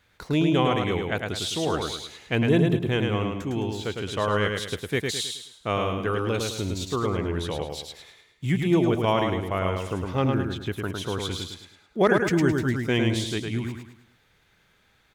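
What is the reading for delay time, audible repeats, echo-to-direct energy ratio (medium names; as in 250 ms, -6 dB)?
106 ms, 4, -3.5 dB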